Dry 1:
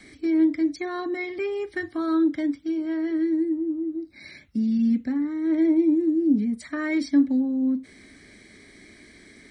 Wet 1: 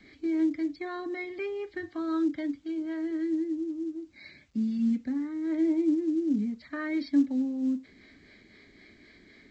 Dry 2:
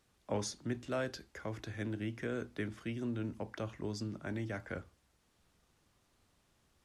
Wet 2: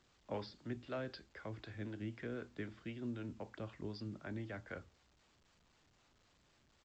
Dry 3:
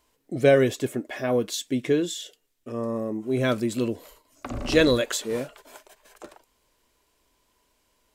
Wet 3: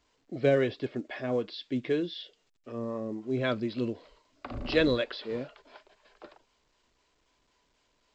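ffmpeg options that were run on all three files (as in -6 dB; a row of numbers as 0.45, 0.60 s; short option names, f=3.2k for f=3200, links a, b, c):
-filter_complex "[0:a]acrossover=split=420[a][b];[a]aeval=exprs='val(0)*(1-0.5/2+0.5/2*cos(2*PI*3.9*n/s))':c=same[c];[b]aeval=exprs='val(0)*(1-0.5/2-0.5/2*cos(2*PI*3.9*n/s))':c=same[d];[c][d]amix=inputs=2:normalize=0,aresample=11025,aresample=44100,volume=-3.5dB" -ar 16000 -c:a pcm_alaw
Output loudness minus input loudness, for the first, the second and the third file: -6.0, -6.0, -6.0 LU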